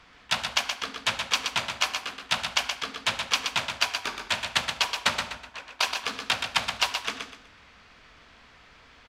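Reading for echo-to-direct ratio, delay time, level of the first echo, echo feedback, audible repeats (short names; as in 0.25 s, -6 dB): -5.5 dB, 0.124 s, -6.0 dB, 30%, 3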